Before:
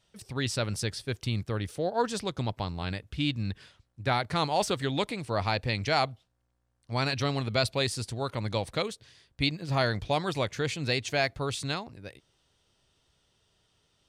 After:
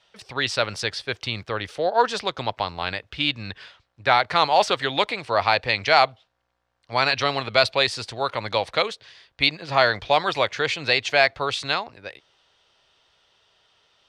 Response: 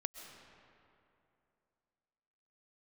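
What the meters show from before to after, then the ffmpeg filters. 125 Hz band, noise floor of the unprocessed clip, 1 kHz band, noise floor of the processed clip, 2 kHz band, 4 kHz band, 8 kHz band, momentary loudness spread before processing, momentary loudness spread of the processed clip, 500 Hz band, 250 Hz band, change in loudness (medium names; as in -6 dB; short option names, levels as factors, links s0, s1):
-4.5 dB, -75 dBFS, +10.5 dB, -73 dBFS, +11.0 dB, +9.0 dB, +1.0 dB, 8 LU, 10 LU, +7.5 dB, -1.5 dB, +8.0 dB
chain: -filter_complex "[0:a]acrossover=split=490 5200:gain=0.158 1 0.1[s0][s1][s2];[s0][s1][s2]amix=inputs=3:normalize=0,acontrast=70,volume=1.68"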